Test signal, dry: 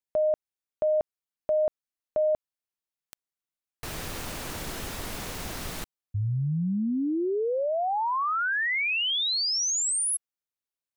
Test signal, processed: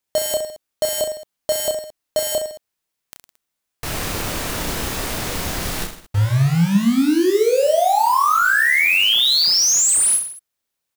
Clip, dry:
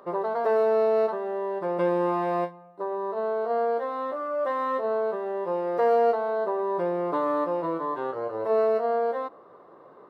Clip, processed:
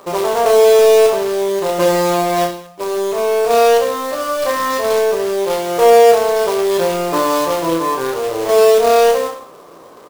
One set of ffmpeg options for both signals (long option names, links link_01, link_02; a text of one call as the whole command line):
ffmpeg -i in.wav -af "acontrast=59,acrusher=bits=2:mode=log:mix=0:aa=0.000001,aecho=1:1:30|66|109.2|161|223.2:0.631|0.398|0.251|0.158|0.1,volume=2dB" out.wav